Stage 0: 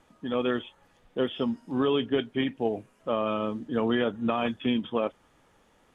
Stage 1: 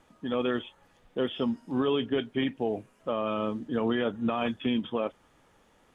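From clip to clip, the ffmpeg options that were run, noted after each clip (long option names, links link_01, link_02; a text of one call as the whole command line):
ffmpeg -i in.wav -af "alimiter=limit=-18dB:level=0:latency=1:release=28" out.wav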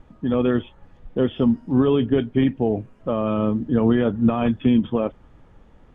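ffmpeg -i in.wav -af "aemphasis=mode=reproduction:type=riaa,volume=4dB" out.wav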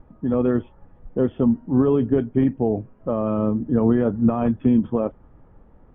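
ffmpeg -i in.wav -af "lowpass=1300" out.wav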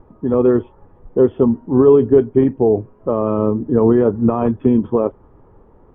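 ffmpeg -i in.wav -af "equalizer=frequency=100:width_type=o:width=0.67:gain=4,equalizer=frequency=400:width_type=o:width=0.67:gain=11,equalizer=frequency=1000:width_type=o:width=0.67:gain=8" out.wav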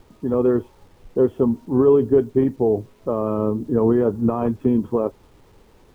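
ffmpeg -i in.wav -af "acrusher=bits=8:mix=0:aa=0.000001,volume=-4.5dB" out.wav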